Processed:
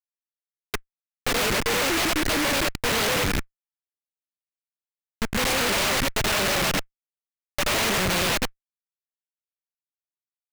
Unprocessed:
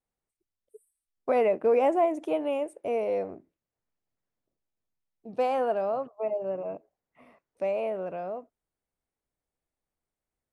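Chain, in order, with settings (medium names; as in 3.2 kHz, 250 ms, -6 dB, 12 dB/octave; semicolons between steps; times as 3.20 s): time reversed locally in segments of 79 ms; Schmitt trigger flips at -42.5 dBFS; delay time shaken by noise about 1.6 kHz, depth 0.36 ms; trim +8.5 dB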